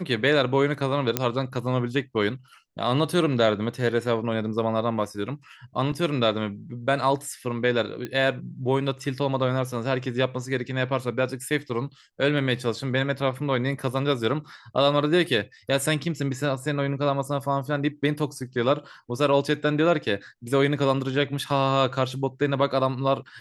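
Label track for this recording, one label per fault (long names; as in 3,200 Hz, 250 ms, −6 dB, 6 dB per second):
1.170000	1.170000	click −5 dBFS
5.920000	5.920000	drop-out 4 ms
8.050000	8.050000	click −18 dBFS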